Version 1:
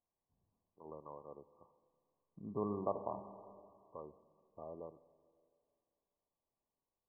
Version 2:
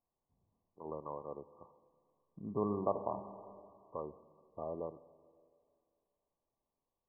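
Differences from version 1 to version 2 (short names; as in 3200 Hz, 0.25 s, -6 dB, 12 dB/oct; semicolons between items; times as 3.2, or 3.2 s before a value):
first voice +7.5 dB; second voice +3.5 dB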